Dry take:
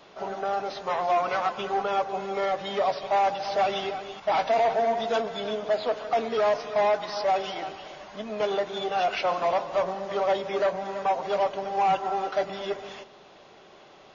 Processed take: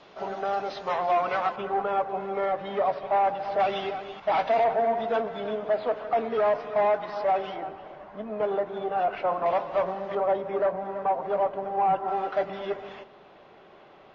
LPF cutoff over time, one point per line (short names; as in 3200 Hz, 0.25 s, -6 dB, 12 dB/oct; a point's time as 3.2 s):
5100 Hz
from 0.98 s 3500 Hz
from 1.56 s 1900 Hz
from 3.6 s 3200 Hz
from 4.64 s 2100 Hz
from 7.56 s 1400 Hz
from 9.46 s 2600 Hz
from 10.15 s 1400 Hz
from 12.08 s 2500 Hz